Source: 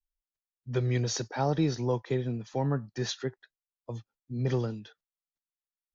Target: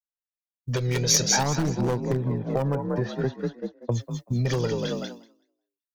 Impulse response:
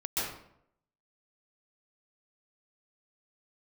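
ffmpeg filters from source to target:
-filter_complex "[0:a]asettb=1/sr,asplit=3[a][b][c];[a]atrim=end=1.434[d];[b]atrim=start=1.43:end=3.92,asetpts=PTS-STARTPTS,afade=t=in:d=0.004:c=qsin,afade=t=out:st=2.486:d=0.004:c=qsin,lowpass=1.1k[e];[c]atrim=start=3.916[f];[d][e]acrossfade=d=0.004:c1=hsin:c2=qsin[g];[g][f]acrossfade=d=0.004:c1=qsin:c2=hsin,asplit=6[h][i][j][k][l][m];[i]adelay=190,afreqshift=37,volume=-7dB[n];[j]adelay=380,afreqshift=74,volume=-14.3dB[o];[k]adelay=570,afreqshift=111,volume=-21.7dB[p];[l]adelay=760,afreqshift=148,volume=-29dB[q];[m]adelay=950,afreqshift=185,volume=-36.3dB[r];[h][n][o][p][q][r]amix=inputs=6:normalize=0,aeval=exprs='0.1*(abs(mod(val(0)/0.1+3,4)-2)-1)':c=same,aphaser=in_gain=1:out_gain=1:delay=2.2:decay=0.42:speed=0.53:type=triangular,aeval=exprs='0.106*(cos(1*acos(clip(val(0)/0.106,-1,1)))-cos(1*PI/2))+0.0106*(cos(2*acos(clip(val(0)/0.106,-1,1)))-cos(2*PI/2))':c=same,acompressor=threshold=-36dB:ratio=10,crystalizer=i=3:c=0,agate=range=-33dB:threshold=-40dB:ratio=3:detection=peak,dynaudnorm=f=180:g=7:m=14dB"

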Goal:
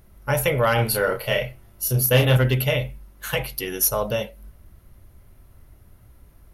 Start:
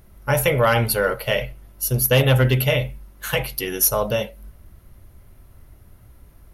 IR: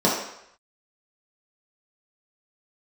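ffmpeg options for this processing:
-filter_complex "[0:a]asettb=1/sr,asplit=3[a][b][c];[a]atrim=end=0.754[d];[b]atrim=start=0.75:end=2.37,asetpts=PTS-STARTPTS,afade=t=in:d=0.004:c=qsin,afade=t=out:st=1.616:d=0.004:c=qsin,asplit=2[e][f];[f]adelay=32,volume=-4.5dB[g];[e][g]amix=inputs=2:normalize=0,atrim=end_sample=71442[h];[c]atrim=start=2.366[i];[d][h]acrossfade=d=0.004:c1=hsin:c2=qsin[j];[j][i]acrossfade=d=0.004:c1=qsin:c2=hsin,volume=-2.5dB"

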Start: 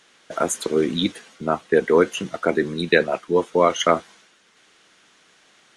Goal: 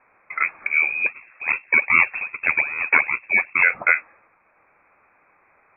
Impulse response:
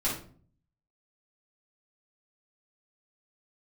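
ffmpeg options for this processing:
-filter_complex "[0:a]asettb=1/sr,asplit=3[a][b][c];[a]atrim=end=1.064[d];[b]atrim=start=1.06:end=3.63,asetpts=PTS-STARTPTS,afade=t=in:d=0.004:c=qsin,afade=t=out:st=2.566:d=0.004:c=qsin,acrusher=samples=30:mix=1:aa=0.000001:lfo=1:lforange=30:lforate=2.5[e];[c]atrim=start=3.626[f];[d][e]acrossfade=d=0.004:c1=hsin:c2=qsin[g];[g][f]acrossfade=d=0.004:c1=qsin:c2=hsin,lowpass=f=2.3k:t=q:w=0.5098,lowpass=f=2.3k:t=q:w=0.6013,lowpass=f=2.3k:t=q:w=0.9,lowpass=f=2.3k:t=q:w=2.563,afreqshift=-2700"

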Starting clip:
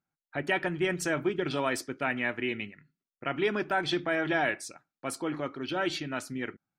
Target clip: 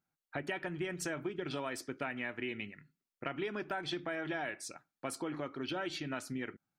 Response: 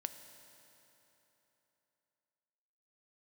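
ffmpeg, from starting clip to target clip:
-af "acompressor=threshold=-35dB:ratio=6"

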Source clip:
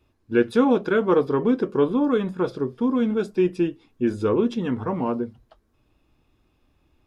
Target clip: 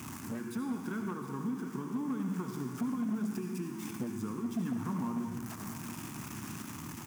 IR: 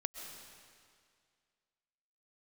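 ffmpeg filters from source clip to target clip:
-filter_complex "[0:a]aeval=exprs='val(0)+0.5*0.0355*sgn(val(0))':c=same,acompressor=threshold=-28dB:ratio=6,firequalizer=gain_entry='entry(230,0);entry(500,-22);entry(950,-4);entry(4000,-15);entry(6000,-2)':delay=0.05:min_phase=1,aecho=1:1:713:0.224[a];[1:a]atrim=start_sample=2205,asetrate=79380,aresample=44100[b];[a][b]afir=irnorm=-1:irlink=0,volume=33dB,asoftclip=hard,volume=-33dB,highpass=f=120:w=0.5412,highpass=f=120:w=1.3066,volume=5dB"

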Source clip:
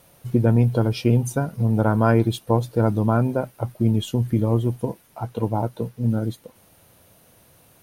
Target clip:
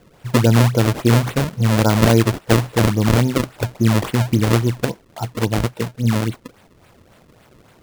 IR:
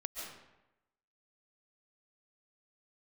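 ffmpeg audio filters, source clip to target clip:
-filter_complex "[0:a]asettb=1/sr,asplit=3[a][b][c];[a]atrim=end=2.654[d];[b]atrim=start=2.65:end=4.89,asetpts=PTS-STARTPTS,afade=t=in:d=0.004:c=qsin,afade=t=out:st=2.236:d=0.004:c=qsin,highshelf=f=6.5k:g=8.5[e];[c]atrim=start=4.886[f];[d][e]acrossfade=d=0.004:c1=hsin:c2=qsin[g];[g][f]acrossfade=d=0.004:c1=qsin:c2=hsin,acrusher=samples=33:mix=1:aa=0.000001:lfo=1:lforange=52.8:lforate=3.6,volume=4dB"

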